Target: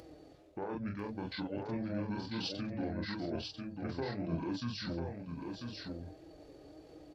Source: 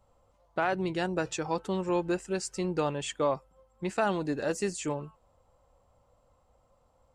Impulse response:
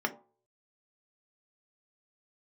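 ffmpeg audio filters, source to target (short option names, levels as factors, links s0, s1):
-filter_complex "[0:a]highpass=f=90:w=0.5412,highpass=f=90:w=1.3066,bandreject=f=60:t=h:w=6,bandreject=f=120:t=h:w=6,bandreject=f=180:t=h:w=6,bandreject=f=240:t=h:w=6,areverse,acompressor=threshold=0.00794:ratio=5,areverse,asplit=2[s0][s1];[s1]adelay=35,volume=0.794[s2];[s0][s2]amix=inputs=2:normalize=0,acompressor=mode=upward:threshold=0.00224:ratio=2.5,asetrate=26222,aresample=44100,atempo=1.68179,alimiter=level_in=3.16:limit=0.0631:level=0:latency=1:release=280,volume=0.316,asplit=2[s3][s4];[s4]aecho=0:1:994:0.596[s5];[s3][s5]amix=inputs=2:normalize=0,flanger=delay=6.1:depth=1.3:regen=69:speed=1.6:shape=sinusoidal,volume=3.35"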